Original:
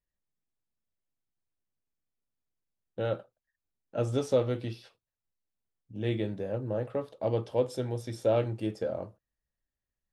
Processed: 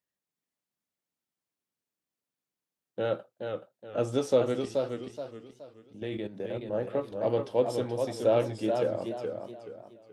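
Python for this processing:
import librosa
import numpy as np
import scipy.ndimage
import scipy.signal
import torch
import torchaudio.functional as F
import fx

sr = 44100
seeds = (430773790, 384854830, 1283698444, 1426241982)

y = scipy.signal.sosfilt(scipy.signal.butter(2, 170.0, 'highpass', fs=sr, output='sos'), x)
y = fx.level_steps(y, sr, step_db=12, at=(4.65, 6.73))
y = fx.echo_warbled(y, sr, ms=425, feedback_pct=34, rate_hz=2.8, cents=106, wet_db=-5.5)
y = F.gain(torch.from_numpy(y), 2.0).numpy()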